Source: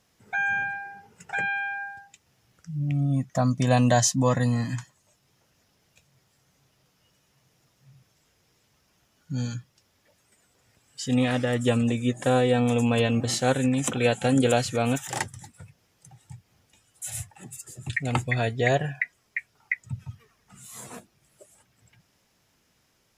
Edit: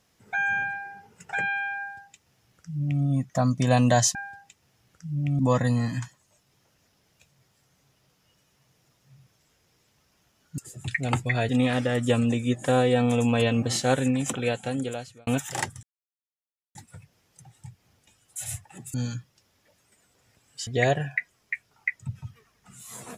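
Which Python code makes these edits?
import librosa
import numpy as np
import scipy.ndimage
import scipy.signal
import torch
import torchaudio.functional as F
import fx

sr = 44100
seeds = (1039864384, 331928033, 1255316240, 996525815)

y = fx.edit(x, sr, fx.duplicate(start_s=1.79, length_s=1.24, to_s=4.15),
    fx.swap(start_s=9.34, length_s=1.73, other_s=17.6, other_length_s=0.91),
    fx.fade_out_span(start_s=13.59, length_s=1.26),
    fx.insert_silence(at_s=15.41, length_s=0.92), tone=tone)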